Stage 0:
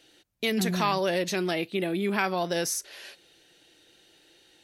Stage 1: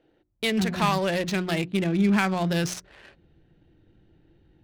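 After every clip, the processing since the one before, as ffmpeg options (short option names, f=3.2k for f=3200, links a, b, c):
-af "asubboost=boost=11.5:cutoff=160,bandreject=f=60:t=h:w=6,bandreject=f=120:t=h:w=6,bandreject=f=180:t=h:w=6,bandreject=f=240:t=h:w=6,bandreject=f=300:t=h:w=6,bandreject=f=360:t=h:w=6,adynamicsmooth=sensitivity=7.5:basefreq=890,volume=2.5dB"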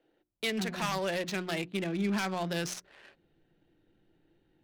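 -filter_complex "[0:a]equalizer=f=62:t=o:w=2.5:g=-14,acrossover=split=290|3000[a][b][c];[b]aeval=exprs='0.0891*(abs(mod(val(0)/0.0891+3,4)-2)-1)':c=same[d];[a][d][c]amix=inputs=3:normalize=0,volume=-5dB"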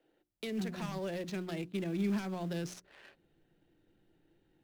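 -filter_complex "[0:a]acrossover=split=480[a][b];[b]acompressor=threshold=-44dB:ratio=4[c];[a][c]amix=inputs=2:normalize=0,asplit=2[d][e];[e]acrusher=bits=4:mode=log:mix=0:aa=0.000001,volume=-6dB[f];[d][f]amix=inputs=2:normalize=0,volume=-5dB"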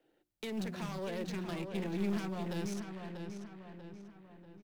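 -filter_complex "[0:a]aeval=exprs='clip(val(0),-1,0.015)':c=same,asplit=2[a][b];[b]adelay=640,lowpass=f=3.5k:p=1,volume=-6dB,asplit=2[c][d];[d]adelay=640,lowpass=f=3.5k:p=1,volume=0.5,asplit=2[e][f];[f]adelay=640,lowpass=f=3.5k:p=1,volume=0.5,asplit=2[g][h];[h]adelay=640,lowpass=f=3.5k:p=1,volume=0.5,asplit=2[i][j];[j]adelay=640,lowpass=f=3.5k:p=1,volume=0.5,asplit=2[k][l];[l]adelay=640,lowpass=f=3.5k:p=1,volume=0.5[m];[a][c][e][g][i][k][m]amix=inputs=7:normalize=0"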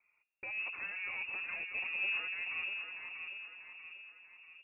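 -af "lowpass=f=2.4k:t=q:w=0.5098,lowpass=f=2.4k:t=q:w=0.6013,lowpass=f=2.4k:t=q:w=0.9,lowpass=f=2.4k:t=q:w=2.563,afreqshift=-2800,volume=-2dB"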